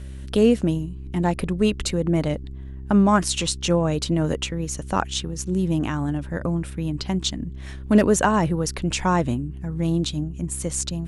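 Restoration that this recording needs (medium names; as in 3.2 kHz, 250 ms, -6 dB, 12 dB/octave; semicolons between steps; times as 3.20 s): clip repair -7 dBFS; de-hum 66 Hz, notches 6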